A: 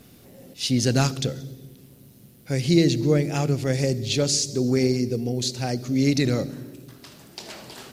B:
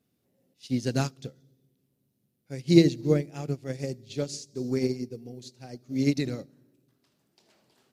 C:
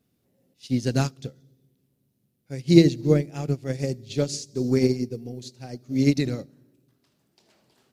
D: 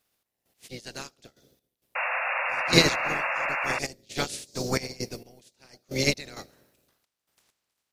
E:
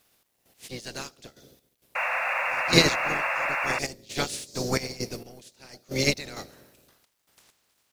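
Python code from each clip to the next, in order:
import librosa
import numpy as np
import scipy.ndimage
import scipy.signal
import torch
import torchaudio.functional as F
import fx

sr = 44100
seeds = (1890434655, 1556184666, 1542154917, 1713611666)

y1 = fx.highpass(x, sr, hz=150.0, slope=6)
y1 = fx.low_shelf(y1, sr, hz=460.0, db=5.5)
y1 = fx.upward_expand(y1, sr, threshold_db=-29.0, expansion=2.5)
y2 = fx.rider(y1, sr, range_db=4, speed_s=2.0)
y2 = fx.low_shelf(y2, sr, hz=93.0, db=6.5)
y2 = y2 * librosa.db_to_amplitude(2.5)
y3 = fx.spec_clip(y2, sr, under_db=25)
y3 = fx.step_gate(y3, sr, bpm=66, pattern='x.x...x.xx', floor_db=-12.0, edge_ms=4.5)
y3 = fx.spec_paint(y3, sr, seeds[0], shape='noise', start_s=1.95, length_s=1.84, low_hz=500.0, high_hz=2800.0, level_db=-24.0)
y3 = y3 * librosa.db_to_amplitude(-4.5)
y4 = fx.law_mismatch(y3, sr, coded='mu')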